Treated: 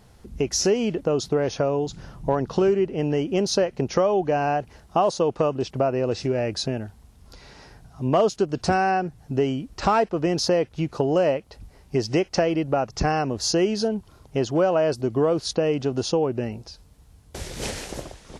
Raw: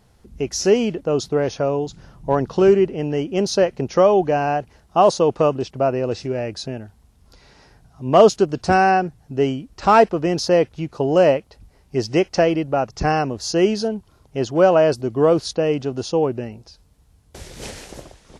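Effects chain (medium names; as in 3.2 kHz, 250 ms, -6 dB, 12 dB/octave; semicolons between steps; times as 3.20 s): compression 3:1, threshold -24 dBFS, peak gain reduction 13 dB; trim +3.5 dB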